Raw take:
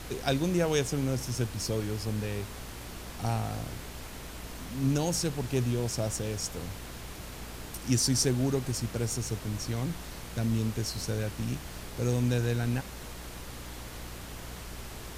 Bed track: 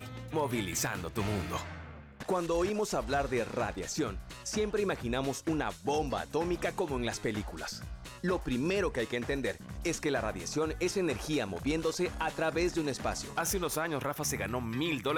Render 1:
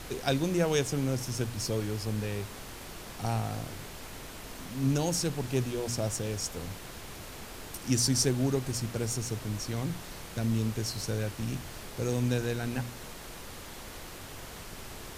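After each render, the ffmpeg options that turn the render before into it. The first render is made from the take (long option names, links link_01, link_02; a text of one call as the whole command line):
ffmpeg -i in.wav -af "bandreject=frequency=60:width_type=h:width=4,bandreject=frequency=120:width_type=h:width=4,bandreject=frequency=180:width_type=h:width=4,bandreject=frequency=240:width_type=h:width=4,bandreject=frequency=300:width_type=h:width=4" out.wav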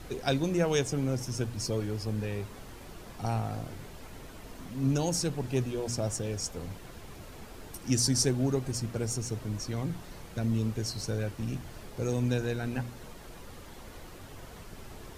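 ffmpeg -i in.wav -af "afftdn=noise_reduction=8:noise_floor=-44" out.wav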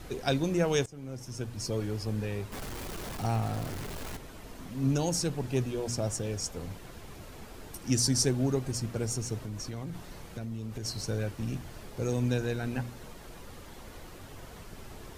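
ffmpeg -i in.wav -filter_complex "[0:a]asettb=1/sr,asplit=3[link_01][link_02][link_03];[link_01]atrim=end=2.524[link_04];[link_02]atrim=start=2.52:end=4.17,asetpts=PTS-STARTPTS,afade=type=in:duration=0.004:curve=qsin,afade=type=out:start_time=1.646:duration=0.004:curve=qsin,aeval=exprs='val(0)+0.5*0.015*sgn(val(0))':channel_layout=same[link_05];[link_03]atrim=start=4.166[link_06];[link_04][link_05]acrossfade=duration=0.004:curve1=hsin:curve2=qsin[link_07];[link_07][link_06]acrossfade=duration=0.004:curve1=qsin:curve2=hsin,asettb=1/sr,asplit=3[link_08][link_09][link_10];[link_08]atrim=end=9.384[link_11];[link_09]atrim=start=9.38:end=10.85,asetpts=PTS-STARTPTS,afade=type=in:duration=0.004:curve=qsin,afade=type=out:start_time=1.466:duration=0.004:curve=qsin,acompressor=threshold=-33dB:ratio=6:attack=3.2:release=140:knee=1:detection=peak[link_12];[link_10]atrim=start=10.846[link_13];[link_11][link_12]acrossfade=duration=0.004:curve1=hsin:curve2=qsin[link_14];[link_14][link_13]acrossfade=duration=0.004:curve1=qsin:curve2=hsin,asplit=2[link_15][link_16];[link_15]atrim=end=0.86,asetpts=PTS-STARTPTS,afade=type=out:start_time=0.856:duration=0.004:curve=hsin:silence=0.0891251[link_17];[link_16]atrim=start=0.86,asetpts=PTS-STARTPTS,afade=type=in:duration=0.99:silence=0.0891251[link_18];[link_17][link_18]concat=n=2:v=0:a=1" out.wav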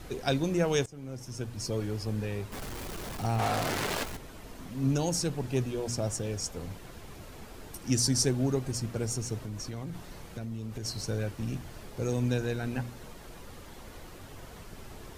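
ffmpeg -i in.wav -filter_complex "[0:a]asplit=3[link_01][link_02][link_03];[link_01]afade=type=out:start_time=3.38:duration=0.02[link_04];[link_02]asplit=2[link_05][link_06];[link_06]highpass=frequency=720:poles=1,volume=23dB,asoftclip=type=tanh:threshold=-19.5dB[link_07];[link_05][link_07]amix=inputs=2:normalize=0,lowpass=frequency=5600:poles=1,volume=-6dB,afade=type=in:start_time=3.38:duration=0.02,afade=type=out:start_time=4.03:duration=0.02[link_08];[link_03]afade=type=in:start_time=4.03:duration=0.02[link_09];[link_04][link_08][link_09]amix=inputs=3:normalize=0" out.wav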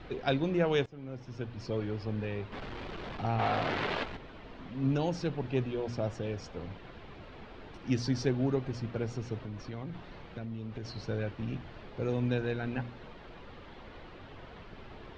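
ffmpeg -i in.wav -af "lowpass=frequency=3700:width=0.5412,lowpass=frequency=3700:width=1.3066,lowshelf=frequency=160:gain=-4.5" out.wav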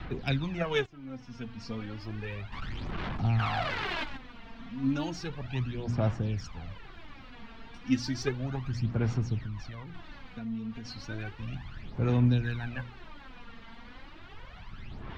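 ffmpeg -i in.wav -filter_complex "[0:a]acrossover=split=310|700|1300[link_01][link_02][link_03][link_04];[link_02]acrusher=bits=3:mix=0:aa=0.5[link_05];[link_01][link_05][link_03][link_04]amix=inputs=4:normalize=0,aphaser=in_gain=1:out_gain=1:delay=4.4:decay=0.66:speed=0.33:type=sinusoidal" out.wav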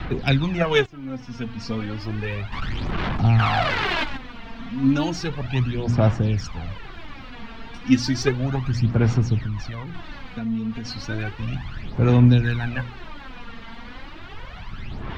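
ffmpeg -i in.wav -af "volume=10dB" out.wav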